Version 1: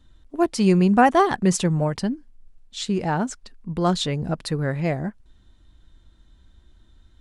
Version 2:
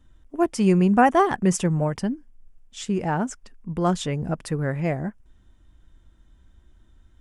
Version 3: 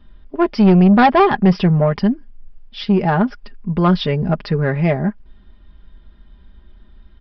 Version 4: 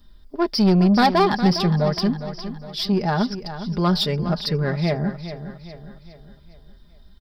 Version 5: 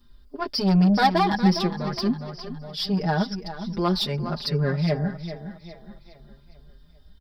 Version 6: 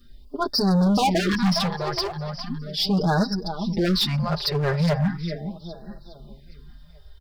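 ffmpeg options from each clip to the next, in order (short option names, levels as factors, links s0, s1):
-af "equalizer=f=4100:w=3.5:g=-13,volume=0.891"
-af "aecho=1:1:4.9:0.59,aresample=11025,asoftclip=type=tanh:threshold=0.2,aresample=44100,volume=2.51"
-filter_complex "[0:a]asplit=2[s0][s1];[s1]aecho=0:1:410|820|1230|1640|2050:0.266|0.122|0.0563|0.0259|0.0119[s2];[s0][s2]amix=inputs=2:normalize=0,aexciter=amount=3.9:drive=10:freq=4100,volume=0.531"
-filter_complex "[0:a]asplit=2[s0][s1];[s1]adelay=5.3,afreqshift=0.47[s2];[s0][s2]amix=inputs=2:normalize=1"
-af "asoftclip=type=hard:threshold=0.0794,afftfilt=real='re*(1-between(b*sr/1024,210*pow(2700/210,0.5+0.5*sin(2*PI*0.38*pts/sr))/1.41,210*pow(2700/210,0.5+0.5*sin(2*PI*0.38*pts/sr))*1.41))':imag='im*(1-between(b*sr/1024,210*pow(2700/210,0.5+0.5*sin(2*PI*0.38*pts/sr))/1.41,210*pow(2700/210,0.5+0.5*sin(2*PI*0.38*pts/sr))*1.41))':win_size=1024:overlap=0.75,volume=1.78"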